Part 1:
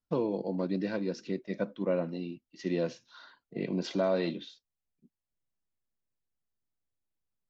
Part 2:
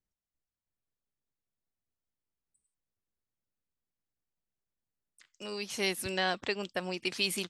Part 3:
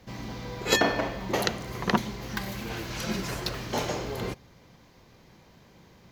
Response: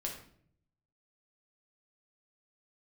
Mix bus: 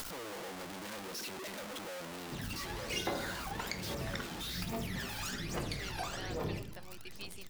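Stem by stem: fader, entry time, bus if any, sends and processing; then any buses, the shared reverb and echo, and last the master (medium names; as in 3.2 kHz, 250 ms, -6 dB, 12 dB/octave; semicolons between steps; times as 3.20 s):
+3.0 dB, 0.00 s, bus A, no send, one-bit comparator
-17.0 dB, 0.00 s, no bus, no send, none
-2.0 dB, 2.25 s, bus A, send -8.5 dB, compression 4:1, threshold -33 dBFS, peak gain reduction 13.5 dB; phaser 1.2 Hz, delay 1.1 ms, feedback 78%; vibrato with a chosen wave square 3.7 Hz, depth 250 cents
bus A: 0.0 dB, bass shelf 370 Hz -6 dB; compression, threshold -41 dBFS, peak gain reduction 16 dB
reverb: on, RT60 0.60 s, pre-delay 6 ms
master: bass shelf 230 Hz -5.5 dB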